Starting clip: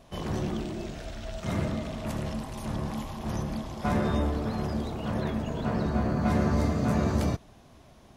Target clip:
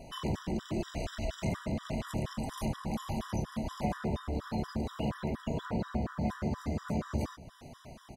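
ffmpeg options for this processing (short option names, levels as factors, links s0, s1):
-filter_complex "[0:a]acompressor=threshold=0.0178:ratio=6,asplit=2[s0][s1];[s1]adelay=134.1,volume=0.112,highshelf=f=4000:g=-3.02[s2];[s0][s2]amix=inputs=2:normalize=0,afftfilt=real='re*gt(sin(2*PI*4.2*pts/sr)*(1-2*mod(floor(b*sr/1024/980),2)),0)':imag='im*gt(sin(2*PI*4.2*pts/sr)*(1-2*mod(floor(b*sr/1024/980),2)),0)':win_size=1024:overlap=0.75,volume=2.11"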